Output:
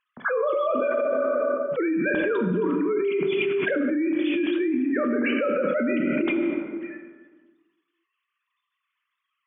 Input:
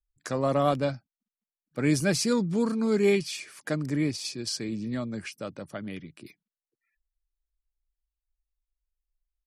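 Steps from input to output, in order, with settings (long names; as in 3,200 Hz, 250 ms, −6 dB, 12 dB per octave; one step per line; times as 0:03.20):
three sine waves on the formant tracks
dense smooth reverb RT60 1.5 s, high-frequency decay 0.55×, DRR 2.5 dB
envelope flattener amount 100%
level −9 dB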